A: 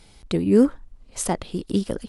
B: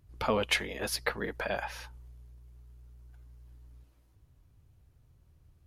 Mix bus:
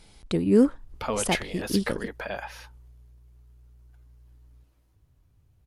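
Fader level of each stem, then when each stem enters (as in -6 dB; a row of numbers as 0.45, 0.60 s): -2.5, -0.5 dB; 0.00, 0.80 s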